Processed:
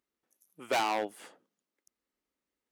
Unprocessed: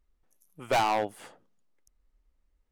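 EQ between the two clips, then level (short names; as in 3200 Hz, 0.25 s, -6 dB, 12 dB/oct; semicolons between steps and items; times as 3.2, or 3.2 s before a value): Chebyshev high-pass 290 Hz, order 2; bell 720 Hz -4.5 dB 1.6 oct; 0.0 dB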